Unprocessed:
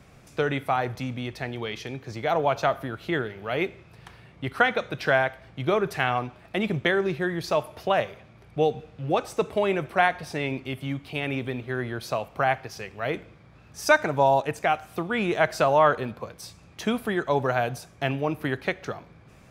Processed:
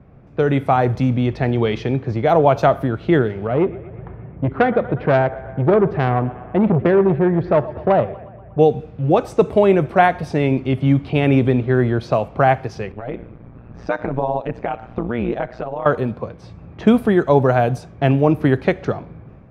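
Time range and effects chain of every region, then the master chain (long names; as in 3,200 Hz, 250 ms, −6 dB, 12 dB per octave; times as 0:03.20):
0:03.47–0:08.59: head-to-tape spacing loss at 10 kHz 43 dB + feedback echo with a high-pass in the loop 120 ms, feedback 79%, high-pass 340 Hz, level −18.5 dB + saturating transformer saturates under 1,200 Hz
0:12.92–0:15.86: low-pass filter 5,100 Hz + downward compressor 2 to 1, threshold −35 dBFS + amplitude modulation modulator 120 Hz, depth 80%
whole clip: low-pass that shuts in the quiet parts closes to 1,800 Hz, open at −23 dBFS; tilt shelving filter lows +7 dB; automatic gain control gain up to 11 dB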